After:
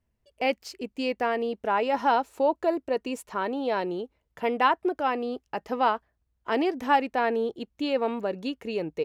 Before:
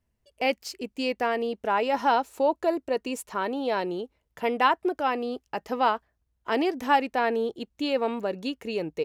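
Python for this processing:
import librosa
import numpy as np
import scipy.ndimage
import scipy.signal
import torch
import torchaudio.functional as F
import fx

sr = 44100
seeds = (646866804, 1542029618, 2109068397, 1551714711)

y = fx.high_shelf(x, sr, hz=4400.0, db=-6.5)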